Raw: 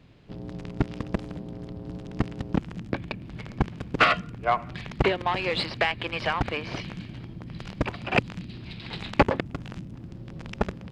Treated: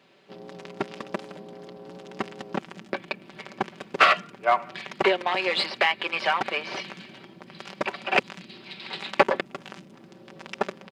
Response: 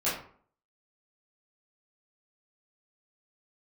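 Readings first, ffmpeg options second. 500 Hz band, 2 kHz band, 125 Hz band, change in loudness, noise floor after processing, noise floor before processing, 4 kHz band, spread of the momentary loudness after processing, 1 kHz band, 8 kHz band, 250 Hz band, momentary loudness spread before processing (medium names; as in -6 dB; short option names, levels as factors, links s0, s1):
+2.0 dB, +3.0 dB, -14.5 dB, +2.5 dB, -51 dBFS, -43 dBFS, +3.5 dB, 20 LU, +2.5 dB, +4.0 dB, -5.5 dB, 16 LU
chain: -filter_complex "[0:a]highpass=410,aecho=1:1:5.2:0.54,asplit=2[s0][s1];[s1]volume=7.5,asoftclip=hard,volume=0.133,volume=0.335[s2];[s0][s2]amix=inputs=2:normalize=0"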